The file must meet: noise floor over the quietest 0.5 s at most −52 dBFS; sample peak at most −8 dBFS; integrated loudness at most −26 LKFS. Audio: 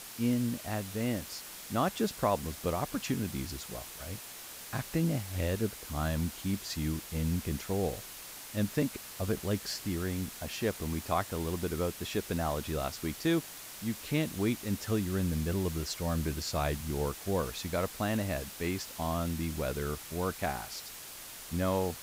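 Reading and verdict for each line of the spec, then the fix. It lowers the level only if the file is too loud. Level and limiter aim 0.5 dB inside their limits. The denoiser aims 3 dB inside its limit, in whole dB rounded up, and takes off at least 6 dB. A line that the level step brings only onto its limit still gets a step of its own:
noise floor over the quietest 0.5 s −46 dBFS: out of spec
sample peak −15.0 dBFS: in spec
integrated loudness −34.0 LKFS: in spec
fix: broadband denoise 9 dB, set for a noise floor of −46 dBFS

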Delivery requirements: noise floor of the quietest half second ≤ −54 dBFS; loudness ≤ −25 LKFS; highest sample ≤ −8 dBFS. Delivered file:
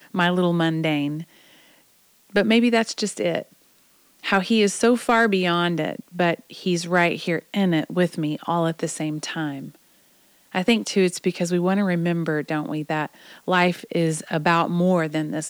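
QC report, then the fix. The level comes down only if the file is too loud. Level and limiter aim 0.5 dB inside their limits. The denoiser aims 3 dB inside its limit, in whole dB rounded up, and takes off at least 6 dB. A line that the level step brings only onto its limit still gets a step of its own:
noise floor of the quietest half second −58 dBFS: in spec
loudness −22.0 LKFS: out of spec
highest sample −9.0 dBFS: in spec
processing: level −3.5 dB

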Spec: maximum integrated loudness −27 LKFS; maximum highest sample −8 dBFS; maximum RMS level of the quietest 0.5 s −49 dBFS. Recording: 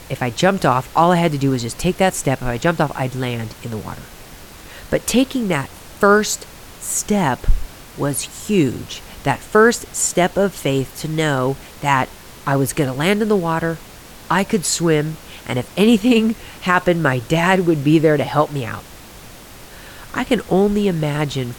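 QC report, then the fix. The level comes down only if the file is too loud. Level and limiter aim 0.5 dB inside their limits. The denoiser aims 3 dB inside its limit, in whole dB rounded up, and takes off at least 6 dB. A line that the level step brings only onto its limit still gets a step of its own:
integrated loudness −18.0 LKFS: out of spec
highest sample −2.0 dBFS: out of spec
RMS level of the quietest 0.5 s −39 dBFS: out of spec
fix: broadband denoise 6 dB, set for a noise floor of −39 dBFS
level −9.5 dB

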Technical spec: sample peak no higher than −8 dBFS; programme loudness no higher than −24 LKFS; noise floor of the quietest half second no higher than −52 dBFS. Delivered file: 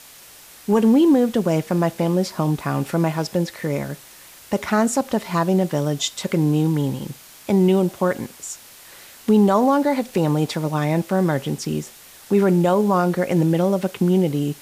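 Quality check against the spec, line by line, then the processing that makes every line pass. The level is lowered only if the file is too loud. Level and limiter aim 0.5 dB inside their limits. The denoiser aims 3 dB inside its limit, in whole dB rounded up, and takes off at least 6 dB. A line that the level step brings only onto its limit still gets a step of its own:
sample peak −6.5 dBFS: out of spec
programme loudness −20.0 LKFS: out of spec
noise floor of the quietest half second −45 dBFS: out of spec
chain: broadband denoise 6 dB, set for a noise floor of −45 dBFS
level −4.5 dB

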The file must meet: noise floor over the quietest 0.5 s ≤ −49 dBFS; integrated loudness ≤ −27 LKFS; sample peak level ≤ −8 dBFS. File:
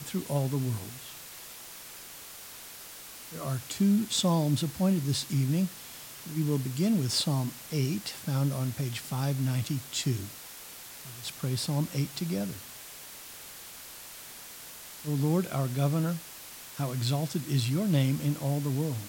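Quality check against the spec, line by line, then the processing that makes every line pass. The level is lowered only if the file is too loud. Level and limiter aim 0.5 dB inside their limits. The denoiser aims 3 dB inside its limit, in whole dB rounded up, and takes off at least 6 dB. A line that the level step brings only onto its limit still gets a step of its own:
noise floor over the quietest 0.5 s −46 dBFS: out of spec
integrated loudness −30.0 LKFS: in spec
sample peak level −13.0 dBFS: in spec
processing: broadband denoise 6 dB, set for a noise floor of −46 dBFS

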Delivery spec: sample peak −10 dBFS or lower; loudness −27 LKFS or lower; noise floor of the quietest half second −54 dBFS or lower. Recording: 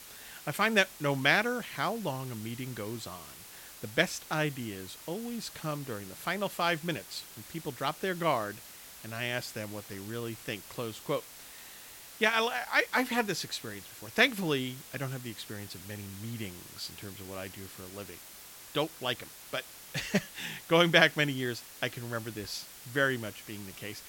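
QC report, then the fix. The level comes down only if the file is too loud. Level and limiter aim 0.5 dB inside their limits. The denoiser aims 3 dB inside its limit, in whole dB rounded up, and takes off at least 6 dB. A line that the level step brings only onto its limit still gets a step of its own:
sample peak −7.0 dBFS: out of spec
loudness −32.0 LKFS: in spec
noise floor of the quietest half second −50 dBFS: out of spec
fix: broadband denoise 7 dB, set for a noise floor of −50 dBFS
brickwall limiter −10.5 dBFS

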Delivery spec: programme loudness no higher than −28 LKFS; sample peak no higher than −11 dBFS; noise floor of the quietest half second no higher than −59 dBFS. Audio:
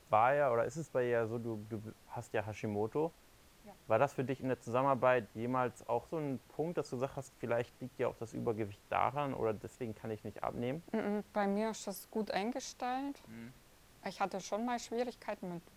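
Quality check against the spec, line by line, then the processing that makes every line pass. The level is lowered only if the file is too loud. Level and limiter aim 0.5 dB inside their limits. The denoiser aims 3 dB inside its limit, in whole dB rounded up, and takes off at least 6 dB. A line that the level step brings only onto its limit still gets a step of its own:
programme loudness −37.0 LKFS: in spec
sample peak −16.5 dBFS: in spec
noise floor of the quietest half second −63 dBFS: in spec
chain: no processing needed

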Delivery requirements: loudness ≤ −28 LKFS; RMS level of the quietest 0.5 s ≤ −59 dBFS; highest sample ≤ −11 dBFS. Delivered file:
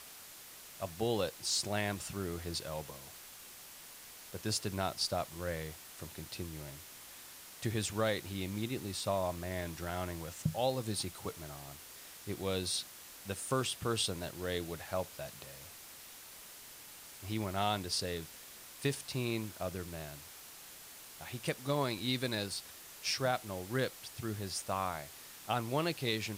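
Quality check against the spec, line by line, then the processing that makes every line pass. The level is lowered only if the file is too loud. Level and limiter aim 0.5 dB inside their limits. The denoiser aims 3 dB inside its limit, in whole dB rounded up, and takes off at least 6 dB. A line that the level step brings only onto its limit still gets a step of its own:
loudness −37.0 LKFS: in spec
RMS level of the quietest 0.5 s −52 dBFS: out of spec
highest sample −18.5 dBFS: in spec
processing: broadband denoise 10 dB, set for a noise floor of −52 dBFS

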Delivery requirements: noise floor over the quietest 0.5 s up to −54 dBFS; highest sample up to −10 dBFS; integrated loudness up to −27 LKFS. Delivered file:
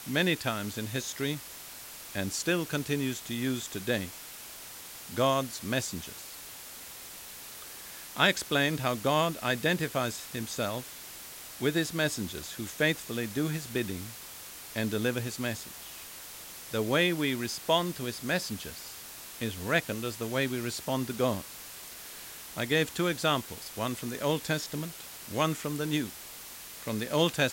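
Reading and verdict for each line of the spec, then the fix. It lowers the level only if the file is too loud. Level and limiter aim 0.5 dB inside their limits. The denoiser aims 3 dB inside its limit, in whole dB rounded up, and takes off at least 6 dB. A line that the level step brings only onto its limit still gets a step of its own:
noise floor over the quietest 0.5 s −45 dBFS: out of spec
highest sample −9.0 dBFS: out of spec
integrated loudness −31.0 LKFS: in spec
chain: broadband denoise 12 dB, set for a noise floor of −45 dBFS
brickwall limiter −10.5 dBFS

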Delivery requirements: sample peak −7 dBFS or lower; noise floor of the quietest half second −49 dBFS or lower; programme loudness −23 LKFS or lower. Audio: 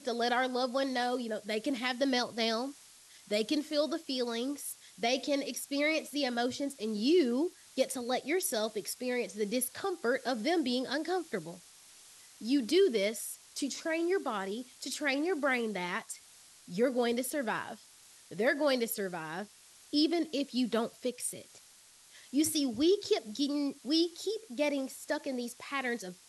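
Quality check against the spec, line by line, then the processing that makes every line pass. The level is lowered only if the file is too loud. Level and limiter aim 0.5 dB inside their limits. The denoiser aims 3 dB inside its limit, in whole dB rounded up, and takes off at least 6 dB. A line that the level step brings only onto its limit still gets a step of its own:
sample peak −16.0 dBFS: in spec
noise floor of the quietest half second −59 dBFS: in spec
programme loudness −32.5 LKFS: in spec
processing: no processing needed

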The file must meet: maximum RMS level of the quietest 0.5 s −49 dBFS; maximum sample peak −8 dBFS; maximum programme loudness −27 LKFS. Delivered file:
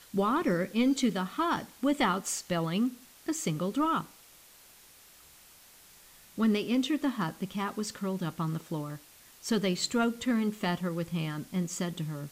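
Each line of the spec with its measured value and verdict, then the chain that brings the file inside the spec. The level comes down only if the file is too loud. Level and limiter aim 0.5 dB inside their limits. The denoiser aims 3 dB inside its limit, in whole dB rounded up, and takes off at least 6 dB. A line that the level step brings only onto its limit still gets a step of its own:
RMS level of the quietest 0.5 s −56 dBFS: in spec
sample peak −15.0 dBFS: in spec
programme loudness −31.0 LKFS: in spec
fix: no processing needed

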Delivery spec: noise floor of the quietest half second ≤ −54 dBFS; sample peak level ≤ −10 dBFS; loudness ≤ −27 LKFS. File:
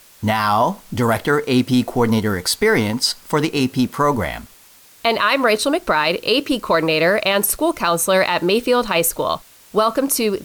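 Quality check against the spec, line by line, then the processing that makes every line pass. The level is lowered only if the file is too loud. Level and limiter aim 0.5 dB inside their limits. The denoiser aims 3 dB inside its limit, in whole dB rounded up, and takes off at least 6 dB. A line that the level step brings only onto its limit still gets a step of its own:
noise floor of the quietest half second −48 dBFS: out of spec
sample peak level −5.5 dBFS: out of spec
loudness −18.0 LKFS: out of spec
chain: level −9.5 dB

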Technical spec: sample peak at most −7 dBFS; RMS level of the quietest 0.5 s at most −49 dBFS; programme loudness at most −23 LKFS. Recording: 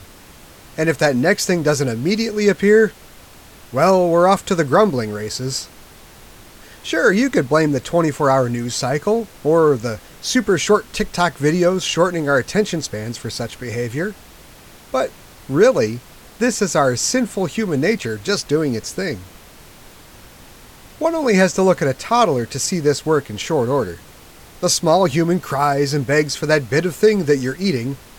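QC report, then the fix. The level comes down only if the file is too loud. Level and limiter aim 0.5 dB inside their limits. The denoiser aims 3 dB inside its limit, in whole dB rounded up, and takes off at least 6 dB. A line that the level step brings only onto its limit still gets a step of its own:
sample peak −3.0 dBFS: out of spec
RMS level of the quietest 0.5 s −43 dBFS: out of spec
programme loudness −18.0 LKFS: out of spec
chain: broadband denoise 6 dB, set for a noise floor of −43 dBFS
level −5.5 dB

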